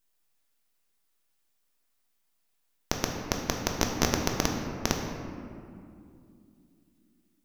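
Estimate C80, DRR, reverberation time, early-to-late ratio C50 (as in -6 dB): 4.5 dB, 1.0 dB, 2.5 s, 3.0 dB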